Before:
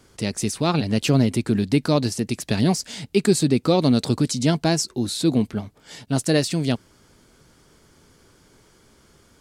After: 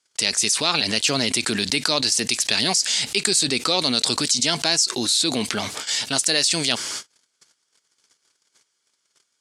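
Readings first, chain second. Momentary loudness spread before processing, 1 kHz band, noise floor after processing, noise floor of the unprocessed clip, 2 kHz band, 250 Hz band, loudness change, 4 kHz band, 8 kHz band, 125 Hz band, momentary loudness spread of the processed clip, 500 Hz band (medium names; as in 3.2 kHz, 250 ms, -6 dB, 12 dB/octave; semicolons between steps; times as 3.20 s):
8 LU, +1.0 dB, -73 dBFS, -57 dBFS, +7.5 dB, -8.0 dB, +2.0 dB, +11.0 dB, +9.5 dB, -12.5 dB, 6 LU, -5.0 dB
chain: gate -48 dBFS, range -55 dB; frequency weighting ITU-R 468; level flattener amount 70%; trim -7 dB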